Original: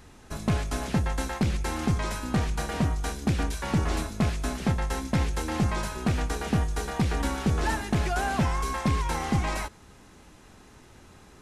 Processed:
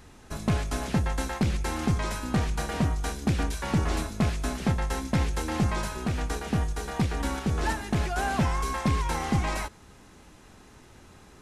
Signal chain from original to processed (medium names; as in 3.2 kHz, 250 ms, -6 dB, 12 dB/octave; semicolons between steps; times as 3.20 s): 6.06–8.18 s: tremolo saw up 3 Hz, depth 35%